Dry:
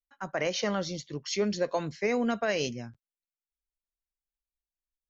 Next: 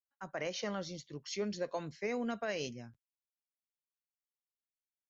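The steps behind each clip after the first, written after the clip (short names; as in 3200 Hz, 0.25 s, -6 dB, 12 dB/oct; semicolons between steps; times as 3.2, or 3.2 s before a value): gate with hold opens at -46 dBFS; gain -8.5 dB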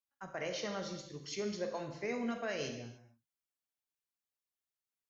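non-linear reverb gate 0.32 s falling, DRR 3.5 dB; gain -2 dB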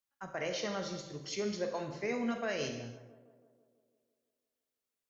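tape echo 0.166 s, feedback 70%, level -15 dB, low-pass 1500 Hz; gain +2.5 dB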